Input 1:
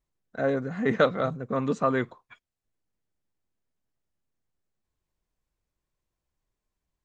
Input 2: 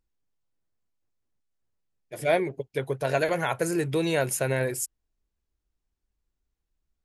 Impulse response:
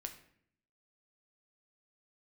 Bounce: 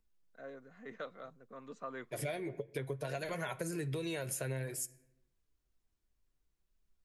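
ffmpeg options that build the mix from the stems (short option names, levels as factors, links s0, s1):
-filter_complex "[0:a]highpass=f=420:p=1,volume=0.224,afade=t=in:st=1.57:d=0.71:silence=0.446684[s0];[1:a]flanger=delay=4.4:depth=5.1:regen=48:speed=0.59:shape=triangular,volume=1.19,asplit=2[s1][s2];[s2]volume=0.447[s3];[2:a]atrim=start_sample=2205[s4];[s3][s4]afir=irnorm=-1:irlink=0[s5];[s0][s1][s5]amix=inputs=3:normalize=0,acrossover=split=250|3000[s6][s7][s8];[s7]acompressor=threshold=0.0447:ratio=6[s9];[s6][s9][s8]amix=inputs=3:normalize=0,bandreject=f=830:w=12,acompressor=threshold=0.0158:ratio=6"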